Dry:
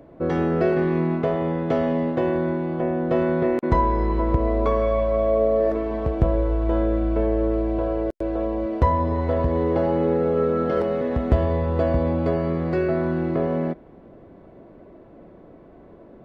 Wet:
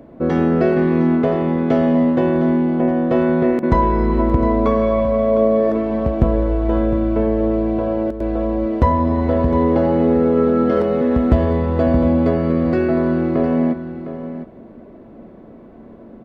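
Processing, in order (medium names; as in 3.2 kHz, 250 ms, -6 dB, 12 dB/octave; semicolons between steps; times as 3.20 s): peaking EQ 230 Hz +10 dB 0.32 oct; on a send: delay 708 ms -11.5 dB; on the sum: trim +3.5 dB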